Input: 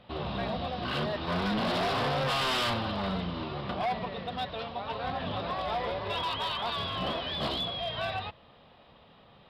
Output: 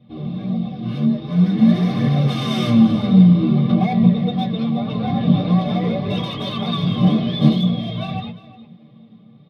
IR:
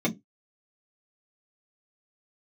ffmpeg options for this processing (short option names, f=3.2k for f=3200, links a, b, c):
-filter_complex "[0:a]bass=f=250:g=13,treble=f=4k:g=11,aecho=1:1:354:0.158,dynaudnorm=f=660:g=7:m=11.5dB,asettb=1/sr,asplit=3[a][b][c];[a]atrim=end=1.444[d];[b]atrim=start=1.44:end=2.19,asetpts=PTS-STARTPTS,afade=t=in:d=0.004:c=qsin,afade=t=out:st=0.746:d=0.004:c=qsin,equalizer=f=1.8k:t=o:w=0.25:g=8.5[e];[c]atrim=start=2.186[f];[d][e]acrossfade=d=0.004:c1=hsin:c2=qsin[g];[g][f]acrossfade=d=0.004:c1=qsin:c2=hsin[h];[1:a]atrim=start_sample=2205[i];[h][i]afir=irnorm=-1:irlink=0,flanger=delay=0.2:depth=9.6:regen=65:speed=0.49:shape=triangular,volume=-13dB"